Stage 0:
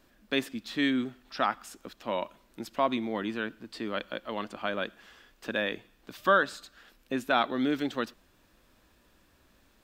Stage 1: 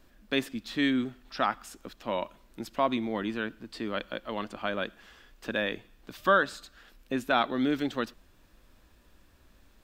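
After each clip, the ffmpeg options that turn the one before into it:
-af "lowshelf=f=77:g=10.5"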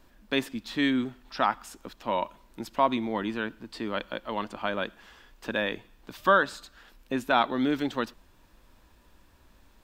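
-af "equalizer=f=930:w=4.4:g=6.5,volume=1dB"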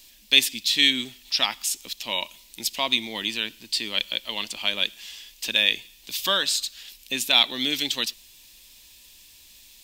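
-af "aexciter=amount=13.4:drive=5.9:freq=2.2k,volume=-6dB"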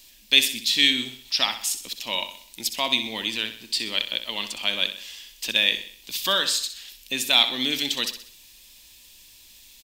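-af "aecho=1:1:63|126|189|252|315:0.299|0.134|0.0605|0.0272|0.0122"

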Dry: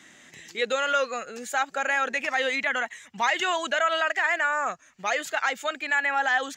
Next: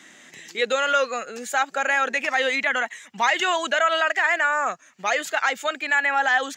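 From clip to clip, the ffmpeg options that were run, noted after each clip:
-af "highpass=170,volume=3.5dB"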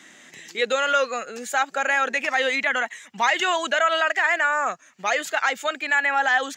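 -af anull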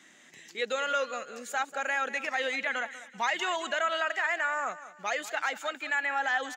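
-af "aecho=1:1:191|382|573:0.178|0.0658|0.0243,volume=-8.5dB"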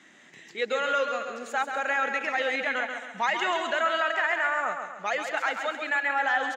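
-af "aemphasis=mode=reproduction:type=50kf,aecho=1:1:135|270|405|540|675:0.447|0.201|0.0905|0.0407|0.0183,volume=3.5dB"

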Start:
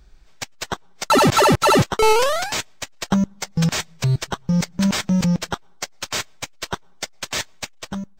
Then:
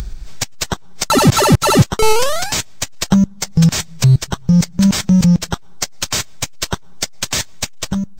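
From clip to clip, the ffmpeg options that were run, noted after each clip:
-af "bass=f=250:g=10,treble=f=4k:g=7,acompressor=mode=upward:threshold=-13dB:ratio=2.5"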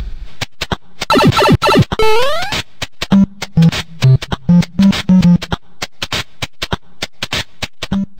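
-af "asoftclip=type=hard:threshold=-7dB,highshelf=f=4.8k:t=q:w=1.5:g=-10.5,volume=3dB"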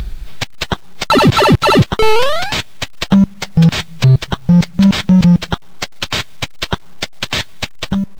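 -af "acrusher=bits=7:mix=0:aa=0.000001"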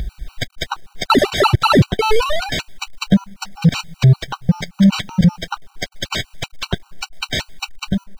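-af "afftfilt=real='re*gt(sin(2*PI*5.2*pts/sr)*(1-2*mod(floor(b*sr/1024/770),2)),0)':imag='im*gt(sin(2*PI*5.2*pts/sr)*(1-2*mod(floor(b*sr/1024/770),2)),0)':win_size=1024:overlap=0.75,volume=-1dB"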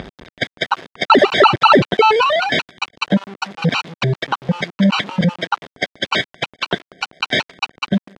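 -af "aeval=exprs='val(0)*gte(abs(val(0)),0.0251)':c=same,apsyclip=11.5dB,highpass=230,lowpass=3.1k,volume=-4dB"

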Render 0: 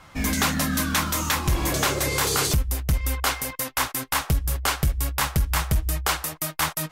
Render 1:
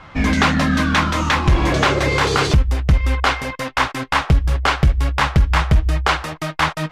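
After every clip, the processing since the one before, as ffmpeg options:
-af "lowpass=3.3k,volume=8.5dB"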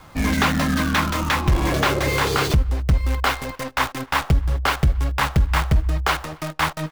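-filter_complex "[0:a]acrossover=split=530|1200[a][b][c];[c]acrusher=bits=5:dc=4:mix=0:aa=0.000001[d];[a][b][d]amix=inputs=3:normalize=0,asplit=2[e][f];[f]adelay=274.1,volume=-29dB,highshelf=f=4k:g=-6.17[g];[e][g]amix=inputs=2:normalize=0,volume=-3.5dB"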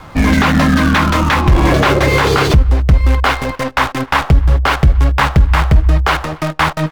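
-af "aemphasis=mode=reproduction:type=cd,alimiter=level_in=11.5dB:limit=-1dB:release=50:level=0:latency=1,volume=-1dB"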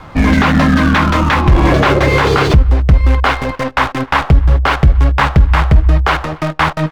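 -af "highshelf=f=6.3k:g=-10,volume=1dB"

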